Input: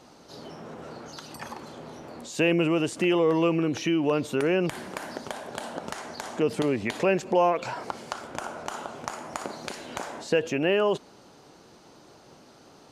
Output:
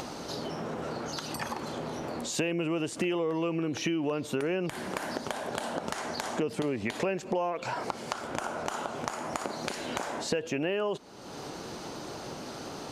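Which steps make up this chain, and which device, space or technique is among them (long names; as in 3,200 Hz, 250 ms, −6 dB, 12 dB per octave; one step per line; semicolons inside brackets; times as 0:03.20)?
upward and downward compression (upward compression, threshold −31 dBFS; downward compressor, threshold −29 dBFS, peak gain reduction 11.5 dB)
level +2 dB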